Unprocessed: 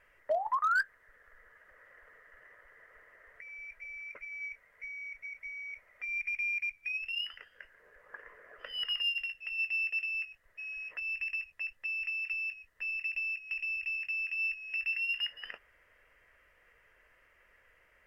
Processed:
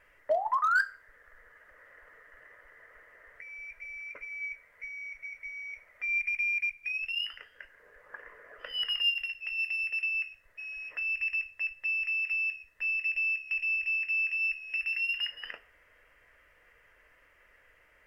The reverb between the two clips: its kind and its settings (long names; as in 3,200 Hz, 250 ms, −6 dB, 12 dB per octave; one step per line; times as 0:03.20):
feedback delay network reverb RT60 0.42 s, low-frequency decay 0.75×, high-frequency decay 0.9×, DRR 10 dB
level +2.5 dB